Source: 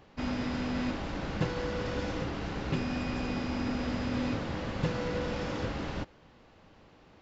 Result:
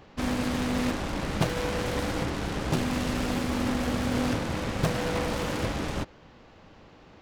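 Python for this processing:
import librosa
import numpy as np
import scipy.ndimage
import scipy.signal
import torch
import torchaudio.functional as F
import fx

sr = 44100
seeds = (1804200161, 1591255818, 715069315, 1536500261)

y = fx.self_delay(x, sr, depth_ms=0.97)
y = y * librosa.db_to_amplitude(5.5)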